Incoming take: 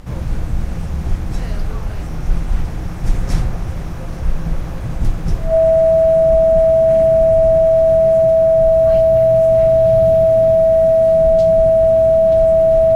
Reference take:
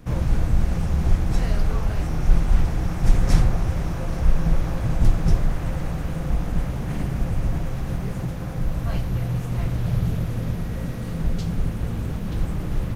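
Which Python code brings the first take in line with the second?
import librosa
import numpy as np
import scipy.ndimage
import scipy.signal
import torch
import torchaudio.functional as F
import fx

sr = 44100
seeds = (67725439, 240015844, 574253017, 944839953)

y = fx.notch(x, sr, hz=650.0, q=30.0)
y = fx.noise_reduce(y, sr, print_start_s=3.7, print_end_s=4.2, reduce_db=6.0)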